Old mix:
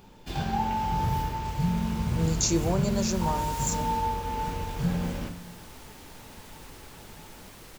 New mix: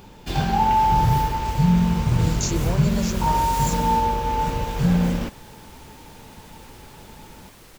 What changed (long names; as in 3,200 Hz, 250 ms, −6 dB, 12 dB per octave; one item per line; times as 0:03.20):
first sound +10.5 dB
reverb: off